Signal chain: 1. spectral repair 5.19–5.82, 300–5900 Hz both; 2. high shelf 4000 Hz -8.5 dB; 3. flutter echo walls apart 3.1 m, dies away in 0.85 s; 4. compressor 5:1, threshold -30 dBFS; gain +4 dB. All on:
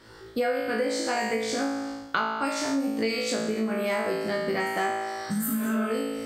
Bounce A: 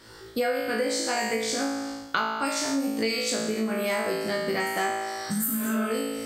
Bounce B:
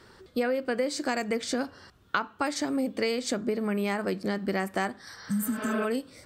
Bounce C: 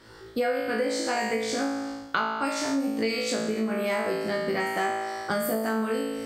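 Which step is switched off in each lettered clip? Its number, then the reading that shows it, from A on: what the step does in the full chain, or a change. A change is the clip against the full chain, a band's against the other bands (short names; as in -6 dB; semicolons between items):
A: 2, 8 kHz band +5.5 dB; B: 3, crest factor change +2.5 dB; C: 1, 125 Hz band -1.5 dB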